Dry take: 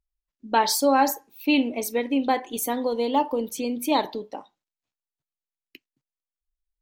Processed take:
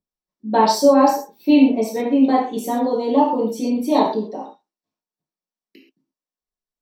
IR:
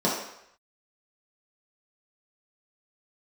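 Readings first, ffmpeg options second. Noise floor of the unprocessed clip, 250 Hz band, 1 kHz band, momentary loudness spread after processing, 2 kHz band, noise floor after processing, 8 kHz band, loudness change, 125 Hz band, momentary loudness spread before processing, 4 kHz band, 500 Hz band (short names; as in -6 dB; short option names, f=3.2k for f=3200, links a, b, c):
under -85 dBFS, +9.0 dB, +5.0 dB, 10 LU, -2.5 dB, under -85 dBFS, -2.5 dB, +6.5 dB, n/a, 9 LU, 0.0 dB, +7.5 dB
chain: -filter_complex "[1:a]atrim=start_sample=2205,atrim=end_sample=6174[a];[0:a][a]afir=irnorm=-1:irlink=0,volume=-11dB"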